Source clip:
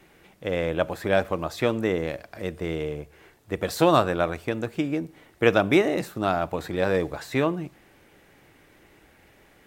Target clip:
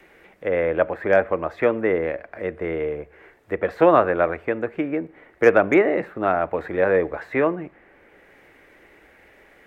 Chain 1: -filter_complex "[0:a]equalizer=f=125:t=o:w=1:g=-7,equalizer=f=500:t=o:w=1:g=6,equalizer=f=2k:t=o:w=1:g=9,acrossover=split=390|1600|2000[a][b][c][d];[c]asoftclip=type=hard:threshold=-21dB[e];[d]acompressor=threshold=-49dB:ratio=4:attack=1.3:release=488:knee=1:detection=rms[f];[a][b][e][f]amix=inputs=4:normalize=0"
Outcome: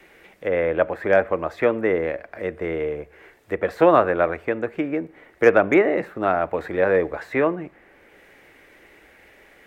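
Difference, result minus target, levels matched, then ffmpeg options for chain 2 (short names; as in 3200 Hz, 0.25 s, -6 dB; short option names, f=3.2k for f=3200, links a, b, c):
compressor: peak gain reduction -8 dB
-filter_complex "[0:a]equalizer=f=125:t=o:w=1:g=-7,equalizer=f=500:t=o:w=1:g=6,equalizer=f=2k:t=o:w=1:g=9,acrossover=split=390|1600|2000[a][b][c][d];[c]asoftclip=type=hard:threshold=-21dB[e];[d]acompressor=threshold=-59.5dB:ratio=4:attack=1.3:release=488:knee=1:detection=rms[f];[a][b][e][f]amix=inputs=4:normalize=0"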